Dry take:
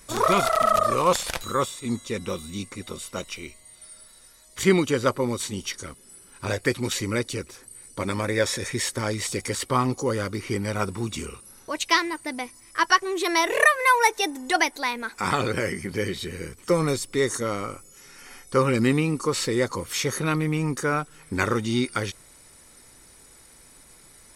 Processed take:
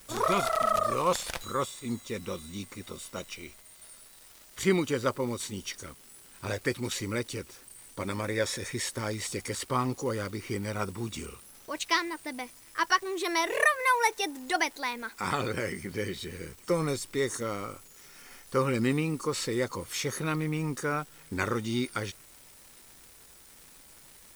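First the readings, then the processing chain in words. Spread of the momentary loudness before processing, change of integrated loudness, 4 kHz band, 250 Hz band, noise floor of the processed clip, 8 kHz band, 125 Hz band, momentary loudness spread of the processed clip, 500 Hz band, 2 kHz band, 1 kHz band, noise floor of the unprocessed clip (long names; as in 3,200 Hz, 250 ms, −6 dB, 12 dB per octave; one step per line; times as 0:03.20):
15 LU, −6.0 dB, −6.0 dB, −6.0 dB, −54 dBFS, −6.0 dB, −6.0 dB, 17 LU, −6.0 dB, −6.0 dB, −6.0 dB, −52 dBFS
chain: surface crackle 400 per second −37 dBFS
background noise blue −52 dBFS
level −6 dB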